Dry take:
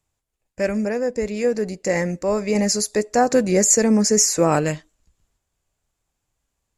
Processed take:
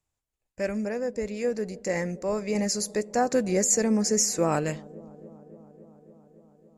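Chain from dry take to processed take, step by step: feedback echo behind a low-pass 281 ms, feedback 77%, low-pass 630 Hz, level -20 dB; trim -7 dB

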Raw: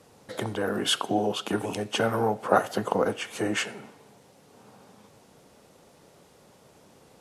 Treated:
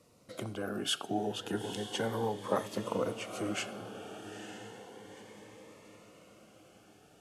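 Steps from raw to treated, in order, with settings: on a send: echo that smears into a reverb 917 ms, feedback 50%, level -10 dB; on the sum: Shepard-style phaser rising 0.33 Hz; trim -7 dB

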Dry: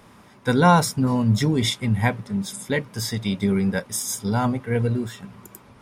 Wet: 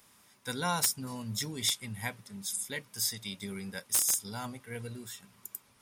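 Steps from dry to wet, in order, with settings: pre-emphasis filter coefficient 0.9; integer overflow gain 16.5 dB

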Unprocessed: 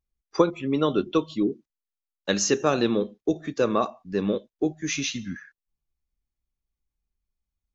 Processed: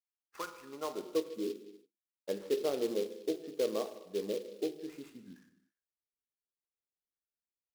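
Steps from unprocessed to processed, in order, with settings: band-pass sweep 2.8 kHz -> 460 Hz, 0.09–1.22 s; careless resampling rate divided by 6×, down none, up hold; gated-style reverb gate 370 ms falling, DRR 8 dB; delay time shaken by noise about 3.6 kHz, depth 0.042 ms; trim -7 dB

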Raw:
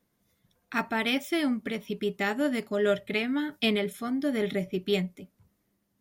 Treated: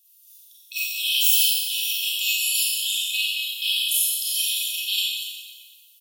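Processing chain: brick-wall FIR high-pass 2.5 kHz; doubling 16 ms -13 dB; in parallel at +0.5 dB: gain riding within 5 dB 0.5 s; on the sum: peak limiter -23.5 dBFS, peak gain reduction 11.5 dB; tilt EQ +2.5 dB/octave; 2.74–3.97 s: companded quantiser 8-bit; treble shelf 9.7 kHz +9.5 dB; Schroeder reverb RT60 1.4 s, combs from 30 ms, DRR -6.5 dB

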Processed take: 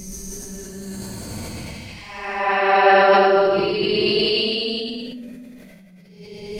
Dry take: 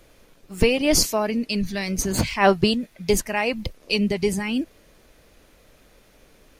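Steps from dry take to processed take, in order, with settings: time-frequency box 2.40–2.73 s, 270–5500 Hz +12 dB; Paulstretch 5.9×, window 0.25 s, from 1.96 s; decay stretcher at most 20 dB/s; trim -10.5 dB

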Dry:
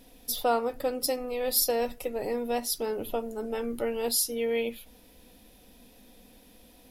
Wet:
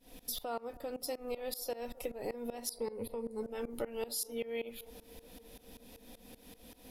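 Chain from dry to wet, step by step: 2.70–3.43 s: rippled EQ curve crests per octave 0.93, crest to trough 17 dB; compression 6:1, threshold -37 dBFS, peak gain reduction 16 dB; tremolo saw up 5.2 Hz, depth 95%; feedback echo behind a band-pass 286 ms, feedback 76%, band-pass 610 Hz, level -20 dB; trim +4.5 dB

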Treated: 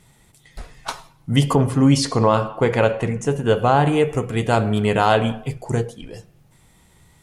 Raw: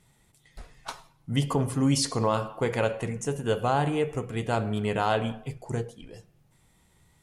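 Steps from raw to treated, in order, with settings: 1.55–3.87 s: treble shelf 5.9 kHz -11 dB; trim +9 dB

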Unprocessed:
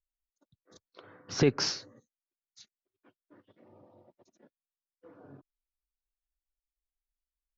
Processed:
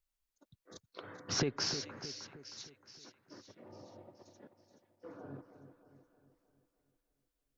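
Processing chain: compression 8:1, threshold -35 dBFS, peak gain reduction 16.5 dB; on a send: two-band feedback delay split 1.9 kHz, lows 311 ms, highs 425 ms, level -10 dB; on the sum: trim +4.5 dB

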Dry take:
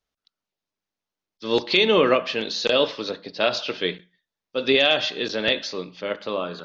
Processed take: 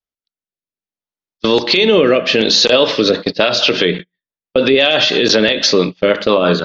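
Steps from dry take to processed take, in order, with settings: gate -36 dBFS, range -32 dB; 3.85–4.82 s: Bessel low-pass 3.3 kHz, order 2; compression 6:1, threshold -27 dBFS, peak gain reduction 13 dB; rotary cabinet horn 0.6 Hz, later 6 Hz, at 2.69 s; loudness maximiser +25.5 dB; trim -1 dB

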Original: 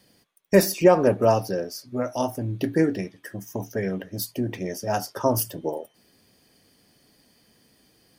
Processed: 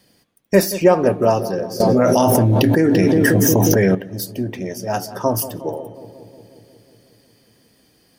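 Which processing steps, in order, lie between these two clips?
filtered feedback delay 180 ms, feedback 76%, low-pass 1.1 kHz, level -12.5 dB; 1.80–3.95 s: level flattener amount 100%; trim +3 dB

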